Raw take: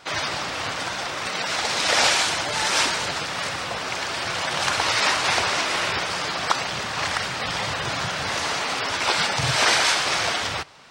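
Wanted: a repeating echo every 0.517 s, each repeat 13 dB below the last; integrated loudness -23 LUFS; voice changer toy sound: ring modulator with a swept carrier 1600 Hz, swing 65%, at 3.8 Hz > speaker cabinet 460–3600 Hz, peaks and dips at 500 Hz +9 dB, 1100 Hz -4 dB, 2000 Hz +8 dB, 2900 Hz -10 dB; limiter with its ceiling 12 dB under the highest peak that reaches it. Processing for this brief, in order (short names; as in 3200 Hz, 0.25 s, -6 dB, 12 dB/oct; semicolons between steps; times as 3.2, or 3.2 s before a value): limiter -18.5 dBFS; feedback echo 0.517 s, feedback 22%, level -13 dB; ring modulator with a swept carrier 1600 Hz, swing 65%, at 3.8 Hz; speaker cabinet 460–3600 Hz, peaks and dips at 500 Hz +9 dB, 1100 Hz -4 dB, 2000 Hz +8 dB, 2900 Hz -10 dB; gain +7.5 dB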